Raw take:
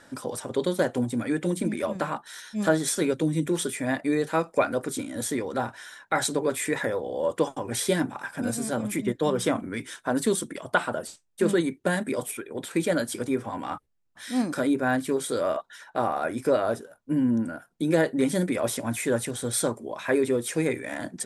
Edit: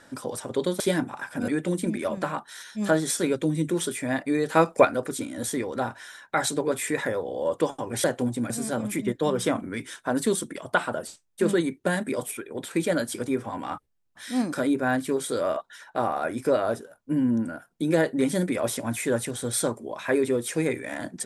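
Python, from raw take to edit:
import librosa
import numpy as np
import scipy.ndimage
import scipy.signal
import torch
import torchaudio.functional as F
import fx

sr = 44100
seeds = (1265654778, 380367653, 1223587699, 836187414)

y = fx.edit(x, sr, fx.swap(start_s=0.8, length_s=0.46, other_s=7.82, other_length_s=0.68),
    fx.clip_gain(start_s=4.28, length_s=0.35, db=5.5), tone=tone)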